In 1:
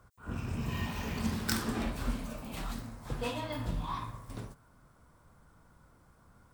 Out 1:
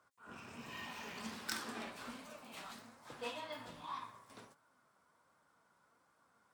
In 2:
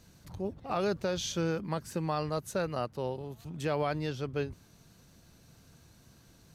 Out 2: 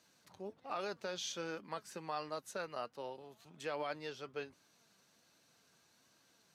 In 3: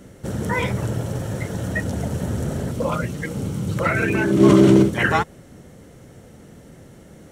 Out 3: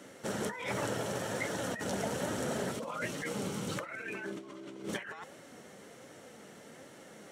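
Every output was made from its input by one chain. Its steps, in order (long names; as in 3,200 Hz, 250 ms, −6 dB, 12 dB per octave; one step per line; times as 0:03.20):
meter weighting curve A
compressor whose output falls as the input rises −32 dBFS, ratio −1
flanger 1.3 Hz, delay 3.1 ms, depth 2.2 ms, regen +73%
level −2 dB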